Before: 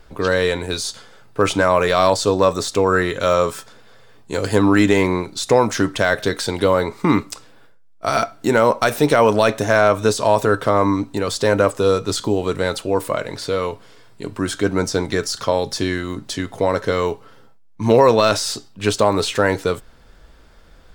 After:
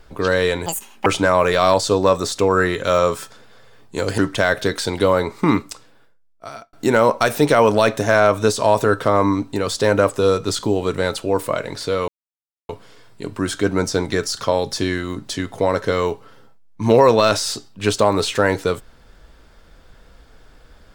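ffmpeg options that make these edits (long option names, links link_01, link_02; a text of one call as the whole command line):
ffmpeg -i in.wav -filter_complex "[0:a]asplit=6[link_01][link_02][link_03][link_04][link_05][link_06];[link_01]atrim=end=0.664[link_07];[link_02]atrim=start=0.66:end=1.42,asetpts=PTS-STARTPTS,asetrate=83790,aresample=44100[link_08];[link_03]atrim=start=1.416:end=4.542[link_09];[link_04]atrim=start=5.788:end=8.34,asetpts=PTS-STARTPTS,afade=type=out:start_time=1.272:duration=1.28[link_10];[link_05]atrim=start=8.34:end=13.69,asetpts=PTS-STARTPTS,afade=type=in:duration=0.004:curve=hsin,afade=type=out:start_time=5.346:duration=0.004:curve=hsin,apad=pad_dur=0.61[link_11];[link_06]atrim=start=13.69,asetpts=PTS-STARTPTS,afade=type=in:duration=0.004:curve=hsin[link_12];[link_07][link_08]acrossfade=duration=0.004:curve1=hsin:curve2=hsin[link_13];[link_13][link_09]acrossfade=duration=0.004:curve1=hsin:curve2=hsin[link_14];[link_10][link_11][link_12]concat=n=3:v=0:a=1[link_15];[link_14][link_15]acrossfade=duration=0.004:curve1=hsin:curve2=hsin" out.wav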